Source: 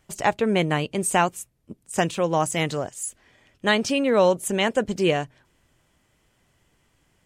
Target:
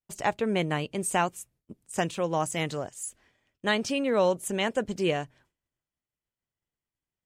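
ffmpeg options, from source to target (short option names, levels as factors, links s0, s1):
-af "agate=range=0.0224:threshold=0.00316:ratio=3:detection=peak,volume=0.531"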